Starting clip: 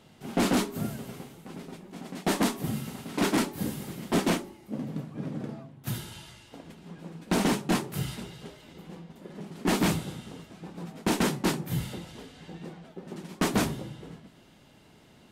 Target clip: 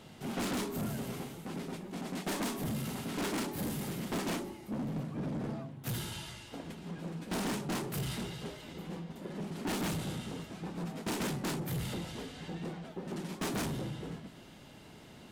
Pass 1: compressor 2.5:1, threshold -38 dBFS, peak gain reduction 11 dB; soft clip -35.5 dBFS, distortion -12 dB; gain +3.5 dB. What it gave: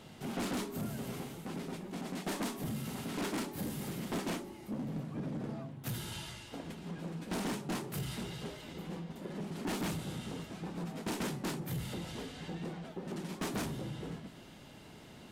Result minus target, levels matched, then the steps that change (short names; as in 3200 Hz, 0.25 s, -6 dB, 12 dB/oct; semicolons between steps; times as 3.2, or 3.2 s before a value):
compressor: peak gain reduction +5.5 dB
change: compressor 2.5:1, threshold -28.5 dBFS, peak gain reduction 5.5 dB